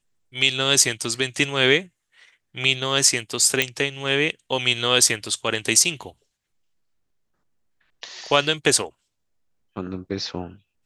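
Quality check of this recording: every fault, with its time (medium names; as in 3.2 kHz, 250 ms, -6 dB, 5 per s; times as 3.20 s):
3.62 s: pop -3 dBFS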